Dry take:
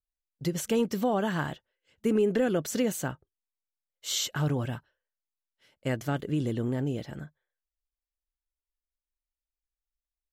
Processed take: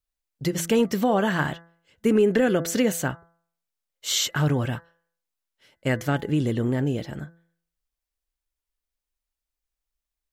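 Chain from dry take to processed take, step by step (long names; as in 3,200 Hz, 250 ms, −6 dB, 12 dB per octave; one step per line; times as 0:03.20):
hum removal 168 Hz, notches 12
dynamic equaliser 1,900 Hz, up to +4 dB, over −49 dBFS, Q 1.8
level +5.5 dB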